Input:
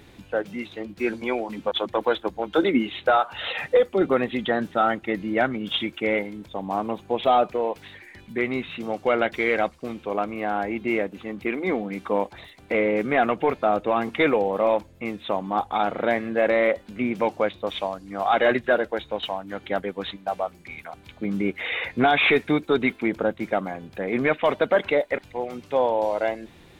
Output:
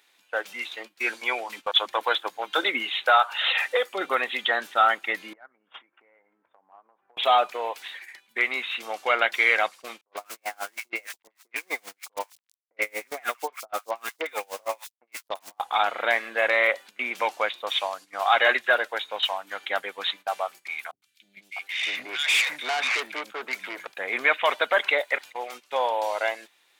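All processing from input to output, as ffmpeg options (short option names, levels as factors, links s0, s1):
-filter_complex "[0:a]asettb=1/sr,asplit=3[s0][s1][s2];[s0]atrim=end=5.334[s3];[s1]atrim=start=5.33:end=7.17,asetpts=PTS-STARTPTS,afade=t=in:d=0.004:c=qsin,afade=t=out:st=1.836:d=0.004:c=qsin,lowpass=f=1600:w=0.5412,lowpass=f=1600:w=1.3066,acompressor=threshold=0.0141:ratio=20:attack=3.2:release=140:knee=1:detection=peak[s4];[s2]atrim=start=7.166[s5];[s3][s4]acrossfade=d=0.004:c1=hsin:c2=qsin[s6];[s6][s5]acrossfade=d=0.004:c1=qsin:c2=hsin,asettb=1/sr,asplit=3[s7][s8][s9];[s7]atrim=end=10.014[s10];[s8]atrim=start=10.01:end=15.6,asetpts=PTS-STARTPTS,afade=t=in:d=0.004:c=qsin,afade=t=out:st=5.586:d=0.004:c=qsin,aeval=exprs='val(0)*gte(abs(val(0)),0.0237)':c=same,acrossover=split=1100|3600[s11][s12][s13];[s12]adelay=60[s14];[s13]adelay=110[s15];[s11][s14][s15]amix=inputs=3:normalize=0,atrim=end_sample=246519,aeval=exprs='val(0)*pow(10,-33*(0.5-0.5*cos(2*PI*6.4*n/s))/20)':c=same[s16];[s9]atrim=start=15.596[s17];[s10][s16]acrossfade=d=0.004:c1=hsin:c2=qsin[s18];[s18][s17]acrossfade=d=0.004:c1=qsin:c2=hsin,asettb=1/sr,asplit=3[s19][s20][s21];[s19]atrim=end=20.914[s22];[s20]atrim=start=20.91:end=23.87,asetpts=PTS-STARTPTS,afade=t=in:d=0.004:c=qsin,afade=t=out:st=2.956:d=0.004:c=qsin,acrossover=split=240|2000[s23][s24][s25];[s25]adelay=110[s26];[s24]adelay=650[s27];[s23][s27][s26]amix=inputs=3:normalize=0,atrim=end_sample=130536,aeval=exprs='(tanh(14.1*val(0)+0.35)-tanh(0.35))/14.1':c=same[s28];[s21]atrim=start=23.866[s29];[s22][s28]acrossfade=d=0.004:c1=hsin:c2=qsin[s30];[s30][s29]acrossfade=d=0.004:c1=qsin:c2=hsin,highpass=980,agate=range=0.2:threshold=0.00501:ratio=16:detection=peak,highshelf=f=3800:g=6.5,volume=1.68"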